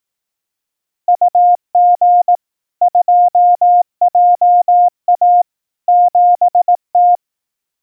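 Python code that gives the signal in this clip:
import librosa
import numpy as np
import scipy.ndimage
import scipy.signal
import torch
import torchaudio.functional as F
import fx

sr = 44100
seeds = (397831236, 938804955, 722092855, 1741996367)

y = fx.morse(sr, text='UG 2JA 7T', wpm=18, hz=710.0, level_db=-5.0)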